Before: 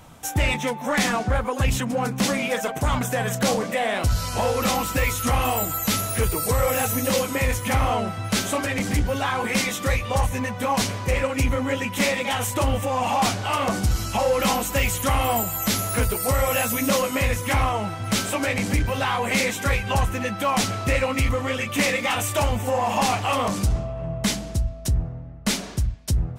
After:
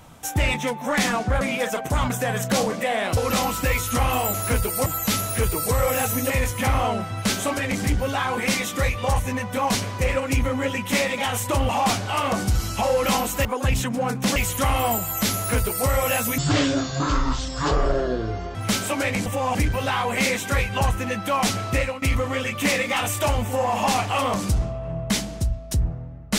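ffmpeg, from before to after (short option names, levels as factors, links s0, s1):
-filter_complex "[0:a]asplit=14[s0][s1][s2][s3][s4][s5][s6][s7][s8][s9][s10][s11][s12][s13];[s0]atrim=end=1.412[s14];[s1]atrim=start=2.318:end=4.082[s15];[s2]atrim=start=4.488:end=5.662[s16];[s3]atrim=start=15.808:end=16.332[s17];[s4]atrim=start=5.658:end=7.102[s18];[s5]atrim=start=7.368:end=12.762[s19];[s6]atrim=start=13.048:end=14.812[s20];[s7]atrim=start=1.408:end=2.322[s21];[s8]atrim=start=14.808:end=16.834[s22];[s9]atrim=start=16.83:end=17.98,asetpts=PTS-STARTPTS,asetrate=23373,aresample=44100[s23];[s10]atrim=start=17.976:end=18.692[s24];[s11]atrim=start=12.758:end=13.052[s25];[s12]atrim=start=18.688:end=21.16,asetpts=PTS-STARTPTS,afade=t=out:st=2.212:d=0.26:silence=0.177828[s26];[s13]atrim=start=21.16,asetpts=PTS-STARTPTS,afade=t=in:d=0.004:c=hsin:silence=0.177828[s27];[s14][s15]acrossfade=d=0.004:c1=hsin:c2=hsin[s28];[s28][s16]acrossfade=d=0.004:c1=hsin:c2=hsin[s29];[s29][s17]acrossfade=d=0.004:c1=hsin:c2=hsin[s30];[s30][s18]acrossfade=d=0.004:c1=hsin:c2=hsin[s31];[s31][s19]acrossfade=d=0.004:c1=hsin:c2=hsin[s32];[s32][s20]acrossfade=d=0.004:c1=hsin:c2=hsin[s33];[s33][s21]acrossfade=d=0.004:c1=hsin:c2=hsin[s34];[s34][s22]acrossfade=d=0.004:c1=hsin:c2=hsin[s35];[s35][s23]acrossfade=d=0.004:c1=hsin:c2=hsin[s36];[s36][s24]acrossfade=d=0.004:c1=hsin:c2=hsin[s37];[s37][s25]acrossfade=d=0.004:c1=hsin:c2=hsin[s38];[s26][s27]concat=n=2:v=0:a=1[s39];[s38][s39]acrossfade=d=0.004:c1=hsin:c2=hsin"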